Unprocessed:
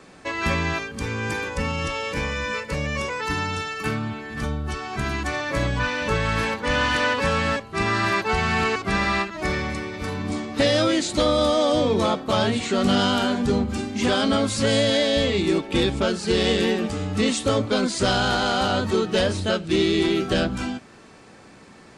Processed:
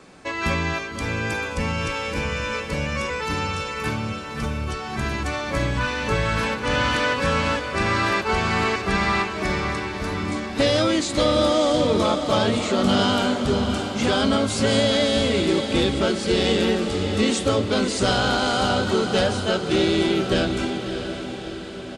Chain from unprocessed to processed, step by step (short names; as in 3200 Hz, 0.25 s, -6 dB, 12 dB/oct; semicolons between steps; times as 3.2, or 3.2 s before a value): notch 1800 Hz, Q 23; on a send: diffused feedback echo 0.618 s, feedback 57%, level -8 dB; on the sum: downsampling 32000 Hz